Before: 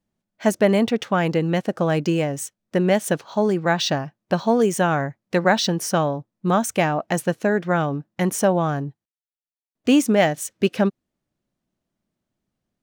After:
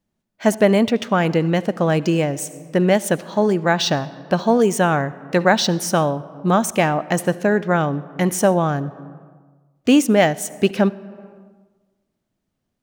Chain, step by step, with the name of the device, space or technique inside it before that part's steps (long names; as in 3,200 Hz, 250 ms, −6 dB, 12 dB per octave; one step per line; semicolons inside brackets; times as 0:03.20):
compressed reverb return (on a send at −8.5 dB: convolution reverb RT60 1.2 s, pre-delay 61 ms + downward compressor 10 to 1, threshold −26 dBFS, peak gain reduction 15 dB)
on the sum: level +2.5 dB